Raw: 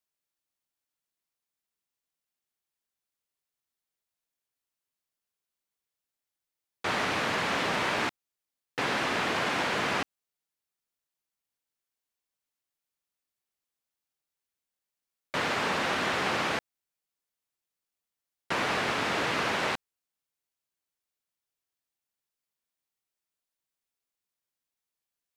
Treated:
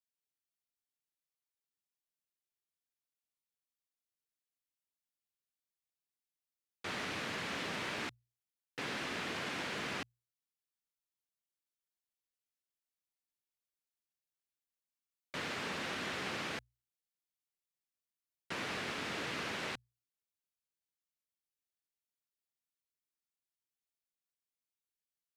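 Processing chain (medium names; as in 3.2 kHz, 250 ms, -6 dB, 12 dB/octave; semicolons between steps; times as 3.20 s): peaking EQ 850 Hz -6.5 dB 1.7 oct; hum notches 60/120 Hz; trim -8 dB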